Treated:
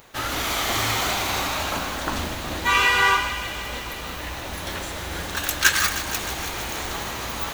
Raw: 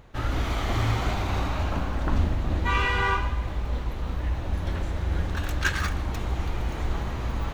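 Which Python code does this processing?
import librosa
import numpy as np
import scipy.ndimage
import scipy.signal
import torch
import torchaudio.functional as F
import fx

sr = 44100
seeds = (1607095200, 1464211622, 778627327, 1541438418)

y = fx.riaa(x, sr, side='recording')
y = fx.echo_wet_highpass(y, sr, ms=156, feedback_pct=79, hz=1700.0, wet_db=-11)
y = y * librosa.db_to_amplitude(5.5)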